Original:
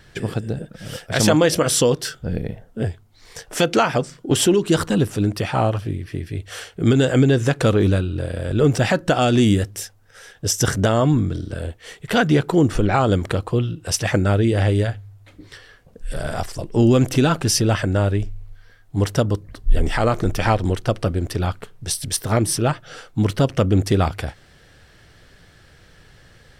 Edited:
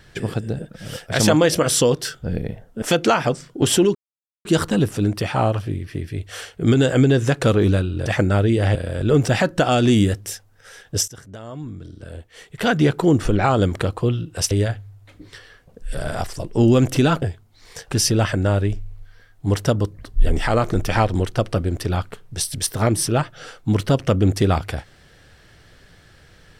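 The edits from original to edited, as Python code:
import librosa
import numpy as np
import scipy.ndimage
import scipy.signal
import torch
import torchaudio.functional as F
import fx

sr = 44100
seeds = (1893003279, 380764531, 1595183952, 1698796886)

y = fx.edit(x, sr, fx.move(start_s=2.82, length_s=0.69, to_s=17.41),
    fx.insert_silence(at_s=4.64, length_s=0.5),
    fx.fade_in_from(start_s=10.58, length_s=1.77, curve='qua', floor_db=-22.0),
    fx.move(start_s=14.01, length_s=0.69, to_s=8.25), tone=tone)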